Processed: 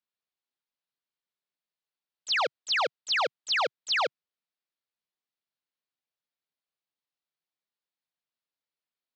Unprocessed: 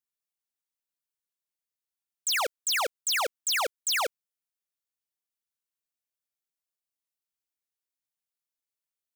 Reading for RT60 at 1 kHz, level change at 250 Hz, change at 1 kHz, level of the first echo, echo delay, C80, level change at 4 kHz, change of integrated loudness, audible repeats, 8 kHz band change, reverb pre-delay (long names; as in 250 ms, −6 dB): no reverb audible, +1.5 dB, +2.0 dB, no echo audible, no echo audible, no reverb audible, +1.0 dB, 0.0 dB, no echo audible, −13.0 dB, no reverb audible